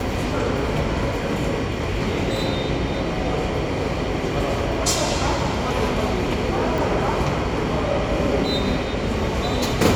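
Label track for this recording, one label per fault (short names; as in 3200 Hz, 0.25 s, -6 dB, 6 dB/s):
6.780000	6.780000	pop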